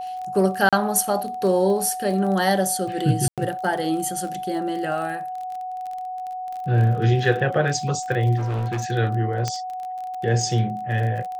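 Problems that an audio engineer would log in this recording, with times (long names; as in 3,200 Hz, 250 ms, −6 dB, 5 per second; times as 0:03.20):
surface crackle 26 per second −29 dBFS
whistle 740 Hz −28 dBFS
0:00.69–0:00.73: drop-out 36 ms
0:03.28–0:03.38: drop-out 97 ms
0:08.37–0:08.86: clipping −22 dBFS
0:09.48: click −11 dBFS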